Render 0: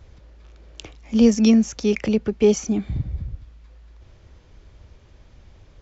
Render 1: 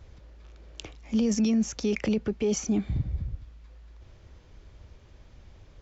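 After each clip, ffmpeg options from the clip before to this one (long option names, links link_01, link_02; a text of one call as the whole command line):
ffmpeg -i in.wav -af "alimiter=limit=-15.5dB:level=0:latency=1:release=11,volume=-2.5dB" out.wav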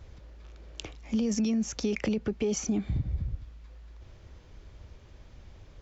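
ffmpeg -i in.wav -af "acompressor=threshold=-26dB:ratio=4,volume=1dB" out.wav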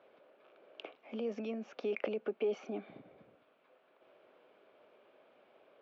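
ffmpeg -i in.wav -af "highpass=frequency=320:width=0.5412,highpass=frequency=320:width=1.3066,equalizer=frequency=320:width_type=q:width=4:gain=-6,equalizer=frequency=630:width_type=q:width=4:gain=5,equalizer=frequency=940:width_type=q:width=4:gain=-4,equalizer=frequency=1900:width_type=q:width=4:gain=-9,lowpass=frequency=2700:width=0.5412,lowpass=frequency=2700:width=1.3066,volume=-1.5dB" out.wav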